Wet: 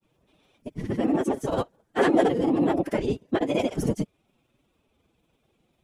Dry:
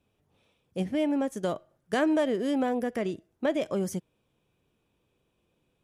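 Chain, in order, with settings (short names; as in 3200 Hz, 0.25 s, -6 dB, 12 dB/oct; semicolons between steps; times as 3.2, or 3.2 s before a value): grains, pitch spread up and down by 0 st; whisperiser; formant-preserving pitch shift +5 st; gain +6.5 dB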